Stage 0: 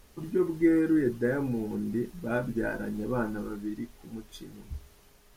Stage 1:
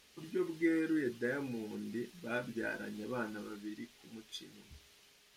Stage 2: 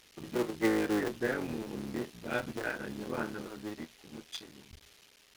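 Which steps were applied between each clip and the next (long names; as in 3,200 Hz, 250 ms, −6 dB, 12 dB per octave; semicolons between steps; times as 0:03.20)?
meter weighting curve D; level −8.5 dB
sub-harmonics by changed cycles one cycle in 3, muted; level +5 dB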